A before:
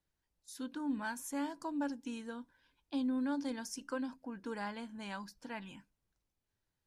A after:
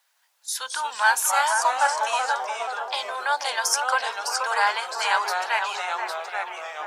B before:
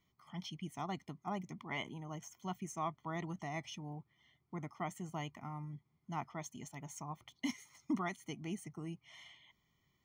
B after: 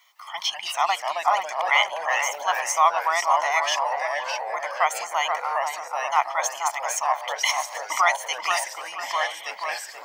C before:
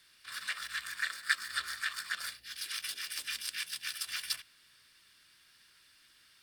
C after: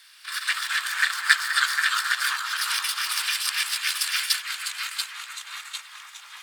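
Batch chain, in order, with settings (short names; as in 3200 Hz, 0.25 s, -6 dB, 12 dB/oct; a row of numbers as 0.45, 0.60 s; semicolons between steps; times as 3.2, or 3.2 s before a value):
inverse Chebyshev high-pass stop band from 290 Hz, stop band 50 dB; echoes that change speed 0.159 s, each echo -2 st, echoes 3, each echo -6 dB; dark delay 0.481 s, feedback 31%, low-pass 1700 Hz, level -4.5 dB; match loudness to -24 LUFS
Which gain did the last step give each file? +22.0, +22.5, +11.5 dB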